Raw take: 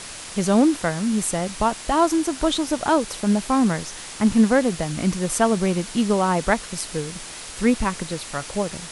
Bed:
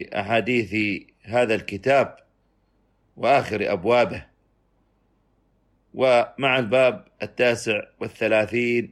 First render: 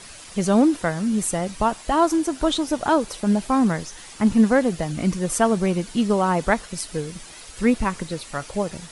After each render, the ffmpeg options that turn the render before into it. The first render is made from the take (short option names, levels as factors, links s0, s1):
-af "afftdn=nr=9:nf=-37"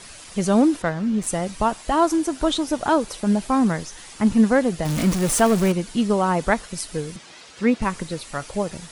-filter_complex "[0:a]asettb=1/sr,asplit=3[s0][s1][s2];[s0]atrim=end=0.824[s3];[s1]atrim=start=0.82:end=1.27,asetpts=PTS-STARTPTS,afade=t=in:d=0.004:c=qsin,afade=t=out:st=0.446:d=0.004:c=qsin,adynamicsmooth=sensitivity=2.5:basefreq=3600[s4];[s2]atrim=start=1.266[s5];[s3][s4]acrossfade=d=0.004:c1=hsin:c2=qsin[s6];[s6][s5]acrossfade=d=0.004:c1=qsin:c2=hsin,asettb=1/sr,asplit=3[s7][s8][s9];[s7]atrim=end=4.854[s10];[s8]atrim=start=4.85:end=5.72,asetpts=PTS-STARTPTS,afade=t=in:d=0.004:c=qsin,afade=t=out:st=0.866:d=0.004:c=qsin,aeval=exprs='val(0)+0.5*0.075*sgn(val(0))':c=same[s11];[s9]atrim=start=5.716[s12];[s10][s11]acrossfade=d=0.004:c1=hsin:c2=qsin[s13];[s13][s12]acrossfade=d=0.004:c1=qsin:c2=hsin,asettb=1/sr,asplit=3[s14][s15][s16];[s14]atrim=end=7.164[s17];[s15]atrim=start=7.16:end=7.82,asetpts=PTS-STARTPTS,afade=t=in:d=0.004:c=qsin,afade=t=out:st=0.656:d=0.004:c=qsin,highpass=140,lowpass=5600[s18];[s16]atrim=start=7.816[s19];[s17][s18]acrossfade=d=0.004:c1=hsin:c2=qsin[s20];[s20][s19]acrossfade=d=0.004:c1=qsin:c2=hsin"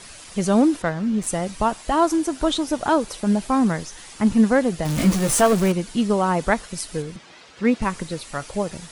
-filter_complex "[0:a]asettb=1/sr,asplit=3[s0][s1][s2];[s0]atrim=end=4.964[s3];[s1]atrim=start=4.96:end=5.53,asetpts=PTS-STARTPTS,afade=t=in:d=0.004:c=qsin,afade=t=out:st=0.566:d=0.004:c=qsin,asplit=2[s4][s5];[s5]adelay=15,volume=0.596[s6];[s4][s6]amix=inputs=2:normalize=0,atrim=end_sample=25137[s7];[s2]atrim=start=5.526[s8];[s3][s7]acrossfade=d=0.004:c1=hsin:c2=qsin[s9];[s9][s8]acrossfade=d=0.004:c1=qsin:c2=hsin,asettb=1/sr,asplit=3[s10][s11][s12];[s10]atrim=end=7.024[s13];[s11]atrim=start=7.02:end=7.65,asetpts=PTS-STARTPTS,afade=t=in:d=0.004:c=qsin,afade=t=out:st=0.626:d=0.004:c=qsin,highshelf=f=5800:g=-11.5[s14];[s12]atrim=start=7.646[s15];[s13][s14]acrossfade=d=0.004:c1=hsin:c2=qsin[s16];[s16][s15]acrossfade=d=0.004:c1=qsin:c2=hsin"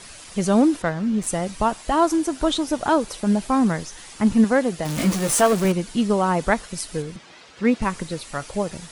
-filter_complex "[0:a]asettb=1/sr,asplit=3[s0][s1][s2];[s0]atrim=end=4.444[s3];[s1]atrim=start=4.44:end=5.65,asetpts=PTS-STARTPTS,afade=t=in:d=0.004:c=qsin,afade=t=out:st=1.206:d=0.004:c=qsin,lowshelf=f=120:g=-10[s4];[s2]atrim=start=5.646[s5];[s3][s4]acrossfade=d=0.004:c1=hsin:c2=qsin[s6];[s6][s5]acrossfade=d=0.004:c1=qsin:c2=hsin"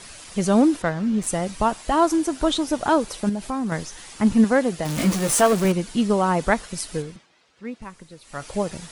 -filter_complex "[0:a]asettb=1/sr,asplit=3[s0][s1][s2];[s0]atrim=end=3.294[s3];[s1]atrim=start=3.29:end=3.72,asetpts=PTS-STARTPTS,afade=t=in:d=0.004:c=qsin,afade=t=out:st=0.426:d=0.004:c=qsin,acompressor=threshold=0.0501:ratio=2.5:attack=3.2:release=140:knee=1:detection=peak[s4];[s2]atrim=start=3.716[s5];[s3][s4]acrossfade=d=0.004:c1=hsin:c2=qsin[s6];[s6][s5]acrossfade=d=0.004:c1=qsin:c2=hsin,asplit=3[s7][s8][s9];[s7]atrim=end=7.28,asetpts=PTS-STARTPTS,afade=t=out:st=6.97:d=0.31:silence=0.188365[s10];[s8]atrim=start=7.28:end=8.21,asetpts=PTS-STARTPTS,volume=0.188[s11];[s9]atrim=start=8.21,asetpts=PTS-STARTPTS,afade=t=in:d=0.31:silence=0.188365[s12];[s10][s11][s12]concat=n=3:v=0:a=1"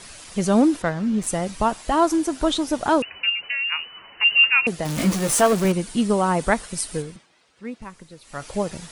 -filter_complex "[0:a]asettb=1/sr,asplit=3[s0][s1][s2];[s0]atrim=end=3.024[s3];[s1]atrim=start=3.02:end=4.67,asetpts=PTS-STARTPTS,afade=t=in:d=0.004:c=qsin,afade=t=out:st=1.646:d=0.004:c=qsin,lowpass=f=2600:t=q:w=0.5098,lowpass=f=2600:t=q:w=0.6013,lowpass=f=2600:t=q:w=0.9,lowpass=f=2600:t=q:w=2.563,afreqshift=-3000[s4];[s2]atrim=start=4.666[s5];[s3][s4]acrossfade=d=0.004:c1=hsin:c2=qsin[s6];[s6][s5]acrossfade=d=0.004:c1=qsin:c2=hsin,asettb=1/sr,asplit=3[s7][s8][s9];[s7]atrim=end=5.734[s10];[s8]atrim=start=5.73:end=7.75,asetpts=PTS-STARTPTS,afade=t=in:d=0.004:c=qsin,afade=t=out:st=2.016:d=0.004:c=qsin,equalizer=f=8900:t=o:w=0.27:g=7.5[s11];[s9]atrim=start=7.746[s12];[s10][s11]acrossfade=d=0.004:c1=hsin:c2=qsin[s13];[s13][s12]acrossfade=d=0.004:c1=qsin:c2=hsin"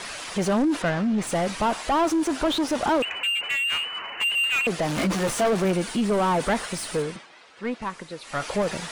-filter_complex "[0:a]asoftclip=type=tanh:threshold=0.15,asplit=2[s0][s1];[s1]highpass=f=720:p=1,volume=10,asoftclip=type=tanh:threshold=0.15[s2];[s0][s2]amix=inputs=2:normalize=0,lowpass=f=2200:p=1,volume=0.501"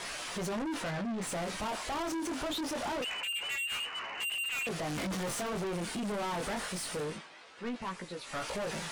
-af "flanger=delay=16.5:depth=7.6:speed=0.25,asoftclip=type=tanh:threshold=0.0224"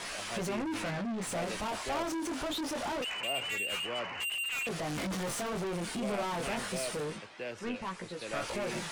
-filter_complex "[1:a]volume=0.0891[s0];[0:a][s0]amix=inputs=2:normalize=0"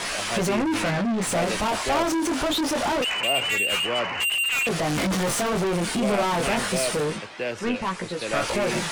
-af "volume=3.55"